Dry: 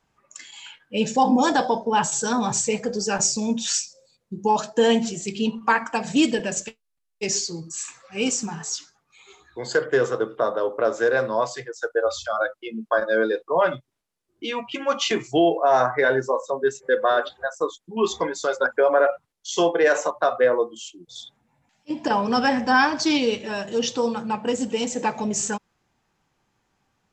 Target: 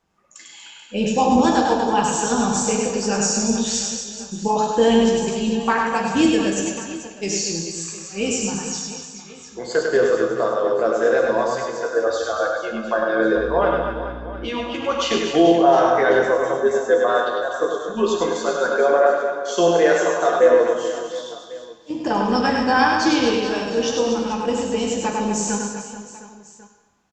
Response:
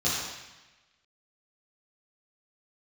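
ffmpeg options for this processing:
-filter_complex "[0:a]tremolo=f=180:d=0.333,asettb=1/sr,asplit=3[link_01][link_02][link_03];[link_01]atrim=end=13.364[link_04];[link_02]atrim=start=13.36:end=14.47,asetpts=PTS-STARTPTS,afade=type=in:duration=0.004:curve=qsin,afade=type=out:start_time=1.106:duration=0.004:curve=qsin,aeval=exprs='val(0)+0.0158*(sin(2*PI*60*n/s)+sin(2*PI*2*60*n/s)/2+sin(2*PI*3*60*n/s)/3+sin(2*PI*4*60*n/s)/4+sin(2*PI*5*60*n/s)/5)':channel_layout=same[link_05];[link_03]atrim=start=14.466[link_06];[link_04][link_05]acrossfade=duration=0.004:curve1=hsin:curve2=qsin[link_07];[link_07][link_06]acrossfade=duration=0.004:curve1=qsin:curve2=hsin,aecho=1:1:100|240|436|710.4|1095:0.631|0.398|0.251|0.158|0.1,asplit=2[link_08][link_09];[1:a]atrim=start_sample=2205[link_10];[link_09][link_10]afir=irnorm=-1:irlink=0,volume=-15dB[link_11];[link_08][link_11]amix=inputs=2:normalize=0"

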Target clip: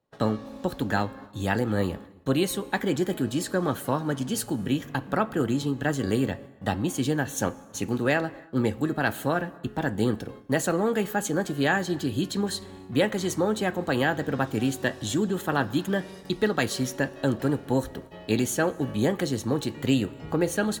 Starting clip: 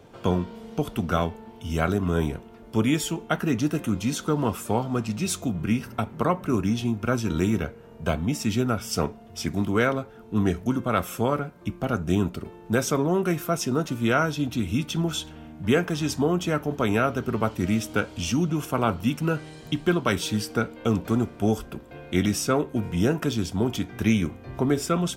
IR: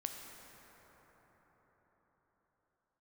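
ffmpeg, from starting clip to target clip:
-filter_complex "[0:a]agate=range=-27dB:threshold=-43dB:ratio=16:detection=peak,asetrate=53361,aresample=44100,asplit=2[link_01][link_02];[1:a]atrim=start_sample=2205,afade=type=out:start_time=0.38:duration=0.01,atrim=end_sample=17199[link_03];[link_02][link_03]afir=irnorm=-1:irlink=0,volume=-11.5dB[link_04];[link_01][link_04]amix=inputs=2:normalize=0,volume=-3dB"

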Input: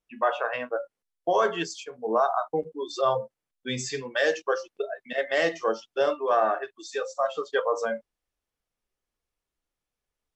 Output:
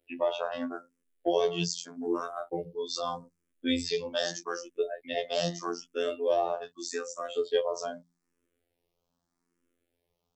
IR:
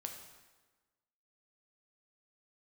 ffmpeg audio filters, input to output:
-filter_complex "[0:a]equalizer=frequency=260:width=0.59:gain=14,bandreject=frequency=60:width_type=h:width=6,bandreject=frequency=120:width_type=h:width=6,bandreject=frequency=180:width_type=h:width=6,bandreject=frequency=240:width_type=h:width=6,acrossover=split=130|3000[link_01][link_02][link_03];[link_02]acompressor=threshold=-43dB:ratio=2[link_04];[link_01][link_04][link_03]amix=inputs=3:normalize=0,afftfilt=real='hypot(re,im)*cos(PI*b)':imag='0':win_size=2048:overlap=0.75,asplit=2[link_05][link_06];[link_06]afreqshift=0.81[link_07];[link_05][link_07]amix=inputs=2:normalize=1,volume=9dB"

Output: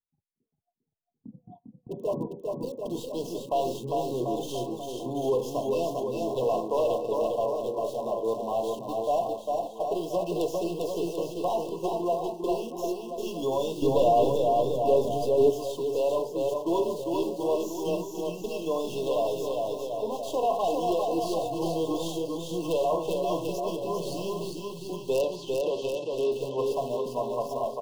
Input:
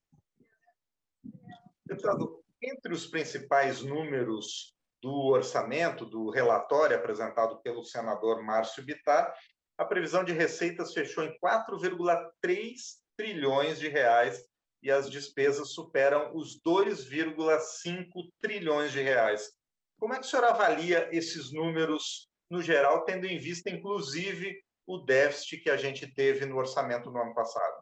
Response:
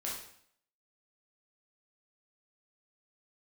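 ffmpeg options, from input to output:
-filter_complex "[0:a]agate=range=-16dB:threshold=-50dB:ratio=16:detection=peak,acrossover=split=1700[link_01][link_02];[link_02]acrusher=bits=5:dc=4:mix=0:aa=0.000001[link_03];[link_01][link_03]amix=inputs=2:normalize=0,asettb=1/sr,asplit=3[link_04][link_05][link_06];[link_04]atrim=end=25.214[link_07];[link_05]atrim=start=25.21:end=26.32,asetpts=PTS-STARTPTS,afade=type=in:duration=0.004:curve=qsin,afade=type=out:start_time=1.106:duration=0.004:curve=qsin,highpass=150,lowpass=5400[link_08];[link_06]atrim=start=26.316[link_09];[link_07][link_08]acrossfade=duration=0.004:curve1=hsin:curve2=qsin[link_10];[link_10][link_09]acrossfade=duration=0.004:curve1=qsin:curve2=hsin,asplit=2[link_11][link_12];[link_12]aecho=0:1:400|740|1029|1275|1483:0.631|0.398|0.251|0.158|0.1[link_13];[link_11][link_13]amix=inputs=2:normalize=0,asoftclip=type=tanh:threshold=-19dB,asettb=1/sr,asplit=3[link_14][link_15][link_16];[link_14]atrim=end=13.824[link_17];[link_15]atrim=start=13.82:end=15.5,asetpts=PTS-STARTPTS,afade=type=in:duration=0.004:curve=qsin,afade=type=out:start_time=1.676:duration=0.004:curve=qsin,lowshelf=frequency=480:gain=10.5[link_18];[link_16]atrim=start=15.496[link_19];[link_17][link_18]acrossfade=duration=0.004:curve1=hsin:curve2=qsin[link_20];[link_20][link_19]acrossfade=duration=0.004:curve1=qsin:curve2=hsin,afftfilt=real='re*(1-between(b*sr/4096,1100,2600))':imag='im*(1-between(b*sr/4096,1100,2600))':win_size=4096:overlap=0.75,volume=1dB"

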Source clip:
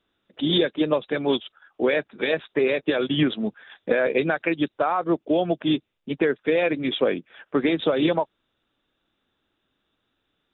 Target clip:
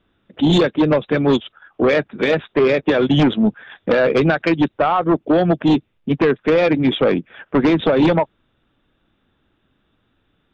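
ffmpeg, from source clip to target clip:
ffmpeg -i in.wav -af "bass=frequency=250:gain=8,treble=frequency=4000:gain=-12,aeval=exprs='0.473*(cos(1*acos(clip(val(0)/0.473,-1,1)))-cos(1*PI/2))+0.168*(cos(5*acos(clip(val(0)/0.473,-1,1)))-cos(5*PI/2))+0.0168*(cos(7*acos(clip(val(0)/0.473,-1,1)))-cos(7*PI/2))':channel_layout=same" out.wav

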